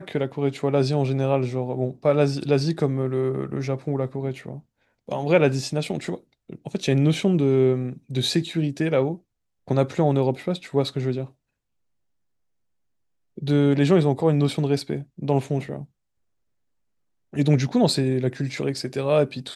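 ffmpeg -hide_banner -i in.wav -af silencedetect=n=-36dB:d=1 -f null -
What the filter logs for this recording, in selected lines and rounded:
silence_start: 11.26
silence_end: 13.38 | silence_duration: 2.12
silence_start: 15.84
silence_end: 17.33 | silence_duration: 1.49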